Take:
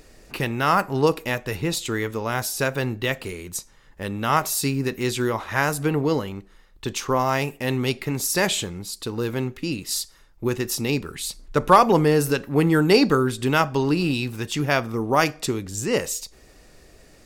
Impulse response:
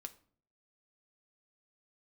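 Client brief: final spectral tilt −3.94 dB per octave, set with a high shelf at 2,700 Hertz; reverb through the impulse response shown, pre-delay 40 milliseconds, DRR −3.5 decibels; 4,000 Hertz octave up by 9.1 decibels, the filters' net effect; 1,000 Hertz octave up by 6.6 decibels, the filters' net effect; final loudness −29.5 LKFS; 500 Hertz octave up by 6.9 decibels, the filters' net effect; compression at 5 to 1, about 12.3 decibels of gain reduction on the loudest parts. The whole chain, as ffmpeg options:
-filter_complex "[0:a]equalizer=frequency=500:width_type=o:gain=7,equalizer=frequency=1000:width_type=o:gain=5,highshelf=frequency=2700:gain=6,equalizer=frequency=4000:width_type=o:gain=6,acompressor=threshold=-16dB:ratio=5,asplit=2[link_01][link_02];[1:a]atrim=start_sample=2205,adelay=40[link_03];[link_02][link_03]afir=irnorm=-1:irlink=0,volume=8dB[link_04];[link_01][link_04]amix=inputs=2:normalize=0,volume=-12.5dB"

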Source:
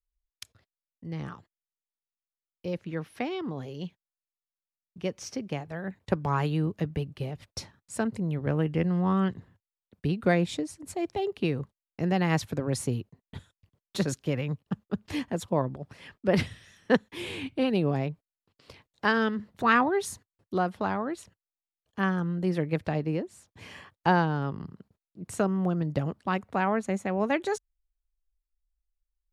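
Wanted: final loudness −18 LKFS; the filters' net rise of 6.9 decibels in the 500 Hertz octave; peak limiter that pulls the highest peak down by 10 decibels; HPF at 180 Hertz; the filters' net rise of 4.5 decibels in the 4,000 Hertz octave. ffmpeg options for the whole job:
ffmpeg -i in.wav -af "highpass=180,equalizer=frequency=500:width_type=o:gain=8.5,equalizer=frequency=4000:width_type=o:gain=6,volume=10dB,alimiter=limit=-3dB:level=0:latency=1" out.wav

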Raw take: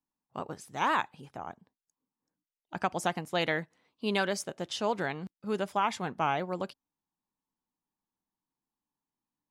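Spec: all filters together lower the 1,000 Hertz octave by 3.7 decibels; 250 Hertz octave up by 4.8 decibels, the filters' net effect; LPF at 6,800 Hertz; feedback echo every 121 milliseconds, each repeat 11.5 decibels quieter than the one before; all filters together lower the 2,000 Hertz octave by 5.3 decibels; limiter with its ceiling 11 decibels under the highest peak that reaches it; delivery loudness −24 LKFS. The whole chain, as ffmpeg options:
ffmpeg -i in.wav -af "lowpass=6800,equalizer=frequency=250:width_type=o:gain=7,equalizer=frequency=1000:width_type=o:gain=-4,equalizer=frequency=2000:width_type=o:gain=-5.5,alimiter=level_in=3dB:limit=-24dB:level=0:latency=1,volume=-3dB,aecho=1:1:121|242|363:0.266|0.0718|0.0194,volume=14.5dB" out.wav

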